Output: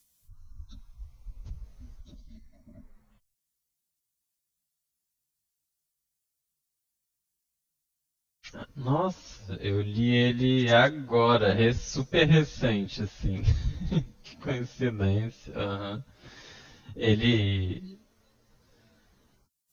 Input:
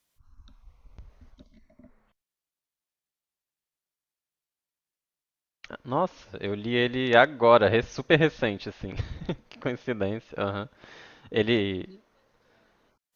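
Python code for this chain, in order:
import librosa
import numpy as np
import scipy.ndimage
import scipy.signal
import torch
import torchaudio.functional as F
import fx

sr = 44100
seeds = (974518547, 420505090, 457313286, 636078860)

y = fx.stretch_vocoder_free(x, sr, factor=1.5)
y = fx.bass_treble(y, sr, bass_db=13, treble_db=14)
y = y * librosa.db_to_amplitude(-1.5)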